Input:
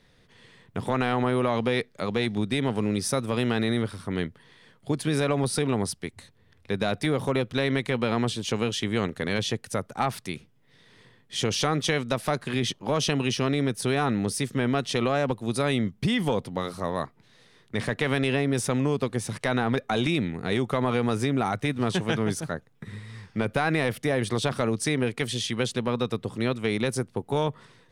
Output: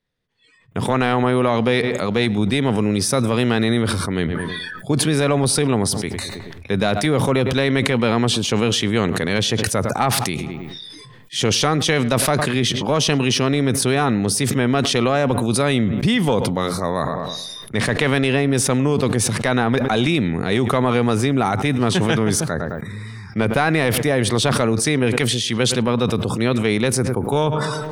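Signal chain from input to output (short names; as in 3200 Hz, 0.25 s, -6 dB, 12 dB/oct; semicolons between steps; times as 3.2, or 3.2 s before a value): spectral noise reduction 25 dB; darkening echo 0.107 s, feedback 37%, low-pass 2500 Hz, level -22.5 dB; sustainer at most 25 dB/s; gain +6.5 dB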